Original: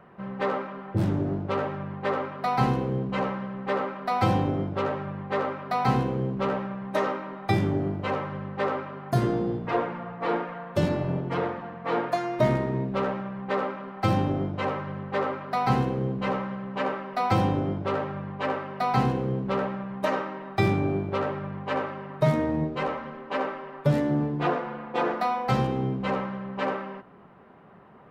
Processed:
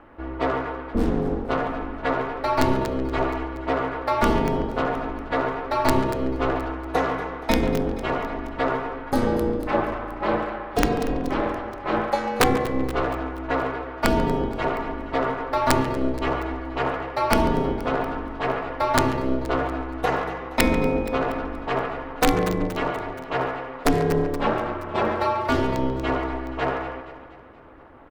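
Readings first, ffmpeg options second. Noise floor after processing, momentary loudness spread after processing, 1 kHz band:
-37 dBFS, 7 LU, +3.5 dB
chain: -filter_complex "[0:a]aeval=exprs='(mod(3.98*val(0)+1,2)-1)/3.98':c=same,asplit=2[s0][s1];[s1]aecho=0:1:237|474|711|948|1185:0.2|0.108|0.0582|0.0314|0.017[s2];[s0][s2]amix=inputs=2:normalize=0,aeval=exprs='val(0)*sin(2*PI*130*n/s)':c=same,asplit=2[s3][s4];[s4]adelay=140,highpass=300,lowpass=3400,asoftclip=type=hard:threshold=0.0841,volume=0.355[s5];[s3][s5]amix=inputs=2:normalize=0,volume=2"

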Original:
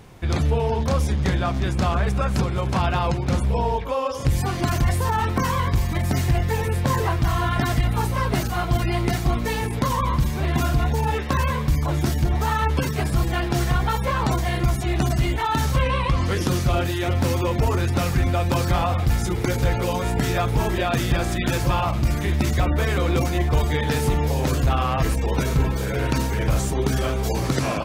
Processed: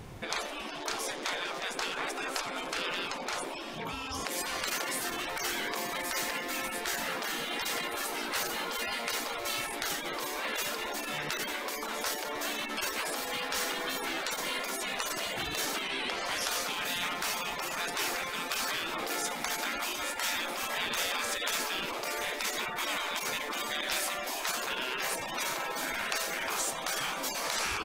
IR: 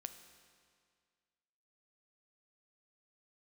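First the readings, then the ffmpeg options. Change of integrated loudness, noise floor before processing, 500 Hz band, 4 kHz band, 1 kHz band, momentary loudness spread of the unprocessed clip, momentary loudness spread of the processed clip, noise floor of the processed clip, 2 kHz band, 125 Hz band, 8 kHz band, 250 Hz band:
-10.0 dB, -26 dBFS, -12.5 dB, 0.0 dB, -10.0 dB, 2 LU, 3 LU, -39 dBFS, -2.5 dB, -33.5 dB, 0.0 dB, -18.0 dB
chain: -af "aecho=1:1:88:0.126,afftfilt=real='re*lt(hypot(re,im),0.112)':imag='im*lt(hypot(re,im),0.112)':win_size=1024:overlap=0.75"

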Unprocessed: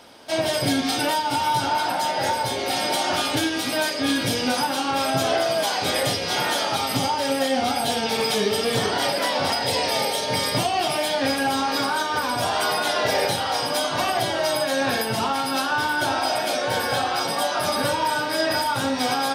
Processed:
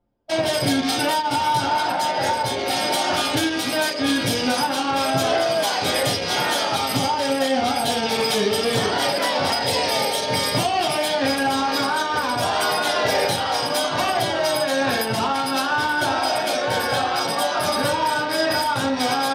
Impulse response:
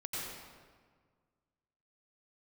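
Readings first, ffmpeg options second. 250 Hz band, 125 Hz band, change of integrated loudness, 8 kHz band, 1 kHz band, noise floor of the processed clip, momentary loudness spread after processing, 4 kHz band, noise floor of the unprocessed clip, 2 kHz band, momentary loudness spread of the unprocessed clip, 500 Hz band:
+2.0 dB, +2.0 dB, +1.5 dB, +1.0 dB, +2.0 dB, -25 dBFS, 2 LU, +1.5 dB, -27 dBFS, +1.5 dB, 2 LU, +2.0 dB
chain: -af "anlmdn=100,acontrast=68,volume=0.596"

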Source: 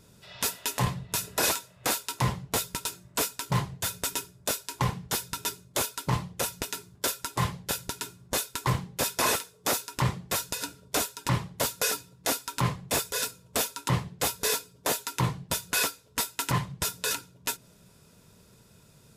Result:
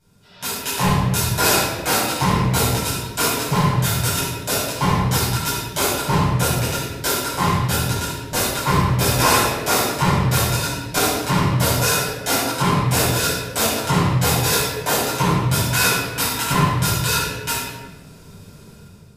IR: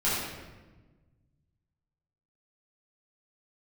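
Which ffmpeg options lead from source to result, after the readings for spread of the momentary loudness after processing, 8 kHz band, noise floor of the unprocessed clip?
6 LU, +8.0 dB, -58 dBFS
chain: -filter_complex "[0:a]dynaudnorm=f=110:g=9:m=4.47[s0];[1:a]atrim=start_sample=2205[s1];[s0][s1]afir=irnorm=-1:irlink=0,volume=0.266"

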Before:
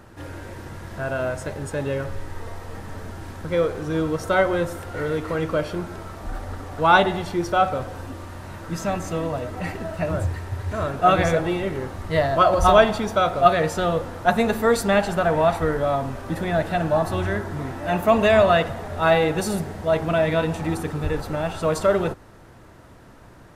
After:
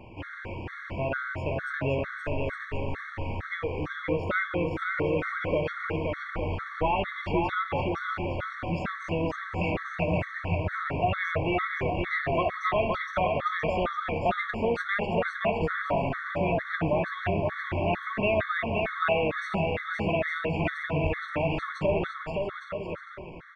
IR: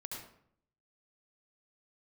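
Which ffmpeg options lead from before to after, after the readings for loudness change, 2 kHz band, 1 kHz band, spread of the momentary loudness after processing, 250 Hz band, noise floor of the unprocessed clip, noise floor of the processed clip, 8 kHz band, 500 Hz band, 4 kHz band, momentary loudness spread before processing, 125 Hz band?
-7.0 dB, -2.5 dB, -8.0 dB, 6 LU, -6.0 dB, -47 dBFS, -41 dBFS, under -20 dB, -7.5 dB, -8.5 dB, 19 LU, -4.5 dB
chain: -af "acompressor=threshold=0.0562:ratio=4,lowpass=f=2400:t=q:w=3.4,aecho=1:1:520|858|1078|1221|1313:0.631|0.398|0.251|0.158|0.1,afftfilt=real='re*gt(sin(2*PI*2.2*pts/sr)*(1-2*mod(floor(b*sr/1024/1100),2)),0)':imag='im*gt(sin(2*PI*2.2*pts/sr)*(1-2*mod(floor(b*sr/1024/1100),2)),0)':win_size=1024:overlap=0.75"

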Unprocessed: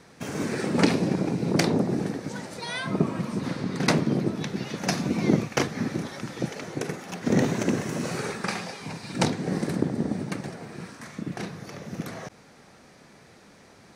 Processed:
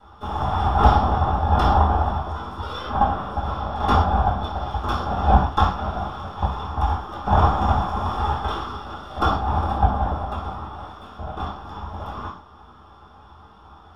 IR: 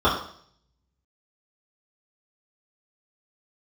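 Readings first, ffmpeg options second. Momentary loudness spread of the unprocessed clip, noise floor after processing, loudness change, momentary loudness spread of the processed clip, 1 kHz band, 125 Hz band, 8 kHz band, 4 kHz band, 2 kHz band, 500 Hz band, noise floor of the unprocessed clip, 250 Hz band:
13 LU, -48 dBFS, +5.5 dB, 15 LU, +15.5 dB, +6.5 dB, under -15 dB, 0.0 dB, -1.0 dB, +0.5 dB, -53 dBFS, -4.5 dB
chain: -filter_complex "[0:a]highpass=f=410:t=q:w=4.3,aeval=exprs='abs(val(0))':c=same[s0];[1:a]atrim=start_sample=2205,atrim=end_sample=6174[s1];[s0][s1]afir=irnorm=-1:irlink=0,volume=0.168"

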